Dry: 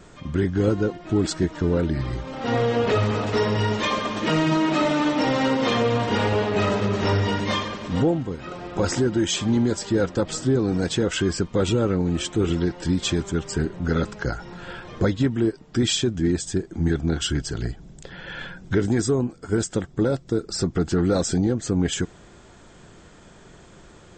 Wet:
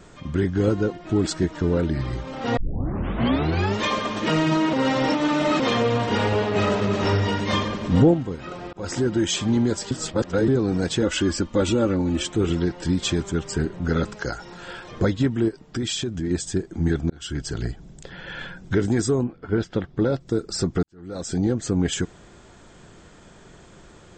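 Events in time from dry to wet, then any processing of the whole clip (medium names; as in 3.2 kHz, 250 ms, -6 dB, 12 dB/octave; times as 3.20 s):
2.57 s: tape start 1.21 s
4.73–5.60 s: reverse
6.21–6.82 s: echo throw 330 ms, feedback 25%, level -9.5 dB
7.53–8.14 s: bass shelf 480 Hz +7 dB
8.73–9.17 s: fade in equal-power
9.91–10.48 s: reverse
11.02–12.23 s: comb 3.5 ms, depth 57%
14.15–14.91 s: tone controls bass -6 dB, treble +6 dB
15.48–16.31 s: compression 3:1, threshold -24 dBFS
17.10–17.51 s: fade in
19.23–20.19 s: low-pass 3 kHz -> 5.8 kHz 24 dB/octave
20.83–21.45 s: fade in quadratic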